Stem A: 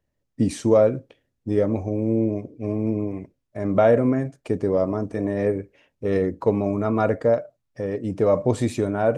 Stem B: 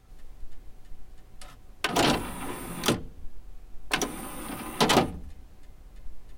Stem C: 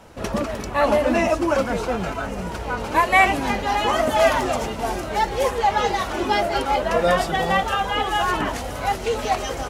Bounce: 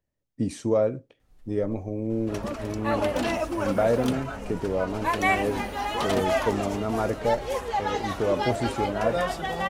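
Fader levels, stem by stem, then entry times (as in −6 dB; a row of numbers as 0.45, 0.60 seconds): −6.0, −10.5, −8.0 decibels; 0.00, 1.20, 2.10 seconds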